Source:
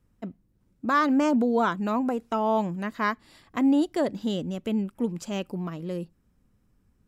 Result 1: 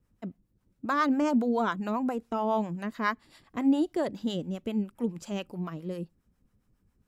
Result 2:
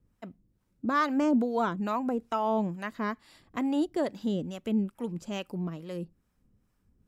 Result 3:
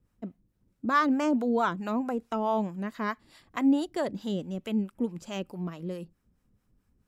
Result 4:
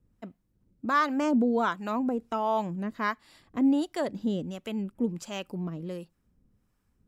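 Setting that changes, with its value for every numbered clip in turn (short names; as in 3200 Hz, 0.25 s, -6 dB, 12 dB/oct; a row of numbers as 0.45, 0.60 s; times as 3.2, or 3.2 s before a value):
harmonic tremolo, rate: 7.3, 2.3, 4.6, 1.4 Hz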